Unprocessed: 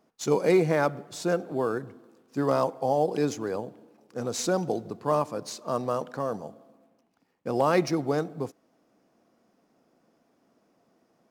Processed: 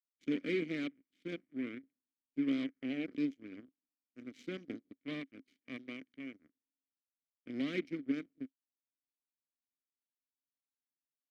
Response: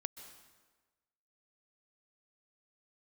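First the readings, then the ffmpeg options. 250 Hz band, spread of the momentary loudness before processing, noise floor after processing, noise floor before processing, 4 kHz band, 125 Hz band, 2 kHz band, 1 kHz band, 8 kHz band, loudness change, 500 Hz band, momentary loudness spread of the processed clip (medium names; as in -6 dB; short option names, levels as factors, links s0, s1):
-6.5 dB, 14 LU, under -85 dBFS, -69 dBFS, -10.0 dB, -18.0 dB, -9.0 dB, -30.5 dB, under -30 dB, -12.0 dB, -19.0 dB, 16 LU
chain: -filter_complex "[0:a]aeval=exprs='0.251*(cos(1*acos(clip(val(0)/0.251,-1,1)))-cos(1*PI/2))+0.00158*(cos(3*acos(clip(val(0)/0.251,-1,1)))-cos(3*PI/2))+0.0355*(cos(7*acos(clip(val(0)/0.251,-1,1)))-cos(7*PI/2))+0.00794*(cos(8*acos(clip(val(0)/0.251,-1,1)))-cos(8*PI/2))':c=same,asplit=3[s0][s1][s2];[s0]bandpass=f=270:t=q:w=8,volume=1[s3];[s1]bandpass=f=2290:t=q:w=8,volume=0.501[s4];[s2]bandpass=f=3010:t=q:w=8,volume=0.355[s5];[s3][s4][s5]amix=inputs=3:normalize=0,volume=1.19"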